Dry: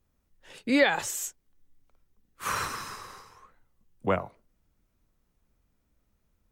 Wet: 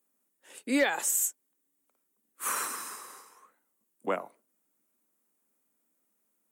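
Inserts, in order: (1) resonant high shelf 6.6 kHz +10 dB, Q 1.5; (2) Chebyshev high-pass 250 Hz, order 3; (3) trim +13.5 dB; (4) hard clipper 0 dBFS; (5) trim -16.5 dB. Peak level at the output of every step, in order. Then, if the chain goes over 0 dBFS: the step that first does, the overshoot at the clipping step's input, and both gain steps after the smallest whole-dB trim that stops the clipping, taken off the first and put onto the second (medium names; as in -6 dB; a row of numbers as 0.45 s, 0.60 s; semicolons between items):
-11.5 dBFS, -10.0 dBFS, +3.5 dBFS, 0.0 dBFS, -16.5 dBFS; step 3, 3.5 dB; step 3 +9.5 dB, step 5 -12.5 dB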